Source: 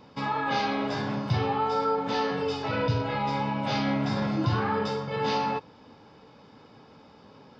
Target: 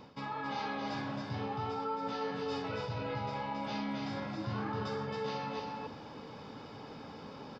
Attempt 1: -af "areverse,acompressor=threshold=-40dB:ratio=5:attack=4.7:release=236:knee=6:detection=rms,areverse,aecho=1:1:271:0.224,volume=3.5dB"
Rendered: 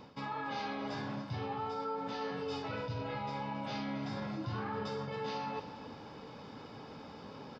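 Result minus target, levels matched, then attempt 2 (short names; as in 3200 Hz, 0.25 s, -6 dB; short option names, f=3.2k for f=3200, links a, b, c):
echo-to-direct -9.5 dB
-af "areverse,acompressor=threshold=-40dB:ratio=5:attack=4.7:release=236:knee=6:detection=rms,areverse,aecho=1:1:271:0.668,volume=3.5dB"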